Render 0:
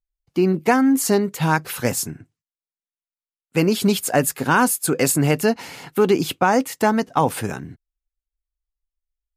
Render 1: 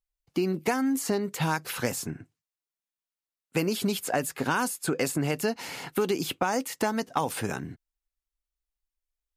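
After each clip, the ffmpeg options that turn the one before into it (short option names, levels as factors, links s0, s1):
-filter_complex "[0:a]lowshelf=f=170:g=-5,acrossover=split=3200|7600[s0][s1][s2];[s0]acompressor=threshold=0.0562:ratio=4[s3];[s1]acompressor=threshold=0.01:ratio=4[s4];[s2]acompressor=threshold=0.01:ratio=4[s5];[s3][s4][s5]amix=inputs=3:normalize=0"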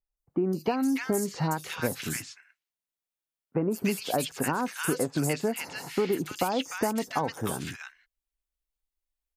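-filter_complex "[0:a]acrossover=split=1400|5400[s0][s1][s2];[s2]adelay=170[s3];[s1]adelay=300[s4];[s0][s4][s3]amix=inputs=3:normalize=0"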